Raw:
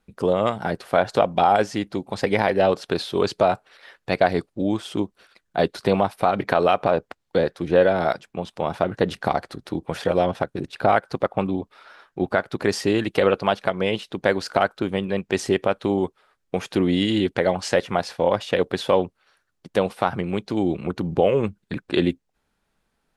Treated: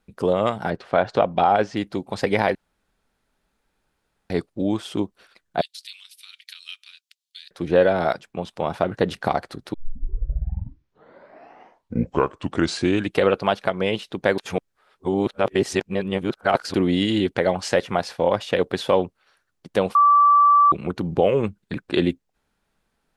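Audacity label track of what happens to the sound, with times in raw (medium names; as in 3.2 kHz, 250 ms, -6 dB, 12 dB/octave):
0.700000	1.770000	distance through air 120 m
2.550000	4.300000	room tone
5.610000	7.510000	inverse Chebyshev high-pass stop band from 710 Hz, stop band 70 dB
9.740000	9.740000	tape start 3.52 s
14.380000	16.740000	reverse
19.950000	20.720000	bleep 1.16 kHz -11 dBFS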